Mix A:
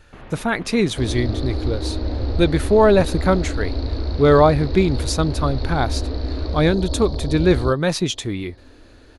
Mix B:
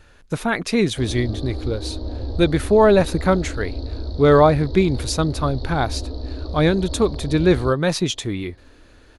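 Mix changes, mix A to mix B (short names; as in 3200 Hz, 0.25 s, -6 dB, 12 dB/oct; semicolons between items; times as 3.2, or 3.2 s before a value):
first sound: muted; second sound -4.5 dB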